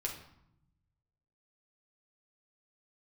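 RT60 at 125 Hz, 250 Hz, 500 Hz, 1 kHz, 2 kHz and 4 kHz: 1.7, 1.3, 0.70, 0.80, 0.65, 0.55 seconds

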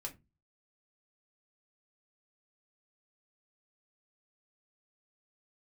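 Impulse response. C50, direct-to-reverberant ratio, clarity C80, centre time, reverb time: 17.0 dB, 0.0 dB, 25.0 dB, 10 ms, 0.25 s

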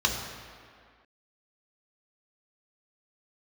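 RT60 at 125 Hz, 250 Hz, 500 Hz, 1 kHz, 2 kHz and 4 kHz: 1.6, 1.9, 1.9, 2.2, 2.1, 1.5 seconds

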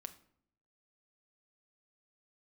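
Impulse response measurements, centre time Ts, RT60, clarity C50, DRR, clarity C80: 5 ms, 0.65 s, 14.5 dB, 8.0 dB, 18.5 dB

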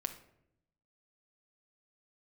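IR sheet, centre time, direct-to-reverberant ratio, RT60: 9 ms, 6.0 dB, 0.75 s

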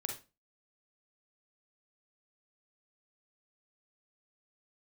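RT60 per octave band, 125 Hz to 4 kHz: 0.40, 0.35, 0.30, 0.30, 0.25, 0.25 seconds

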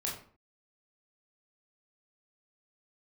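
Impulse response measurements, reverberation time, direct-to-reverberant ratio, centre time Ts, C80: 0.45 s, −3.5 dB, 34 ms, 10.0 dB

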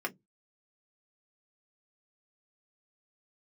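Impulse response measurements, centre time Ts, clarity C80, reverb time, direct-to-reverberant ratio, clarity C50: 7 ms, 37.5 dB, 0.15 s, 1.5 dB, 27.0 dB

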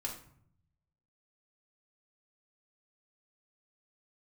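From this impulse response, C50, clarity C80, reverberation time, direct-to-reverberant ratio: 7.5 dB, 11.5 dB, 0.60 s, −1.5 dB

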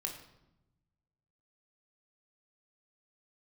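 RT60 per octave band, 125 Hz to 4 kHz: 1.8, 1.4, 0.95, 0.85, 0.70, 0.65 seconds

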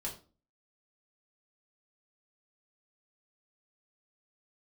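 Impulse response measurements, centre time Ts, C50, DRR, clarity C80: 20 ms, 10.0 dB, −4.0 dB, 14.5 dB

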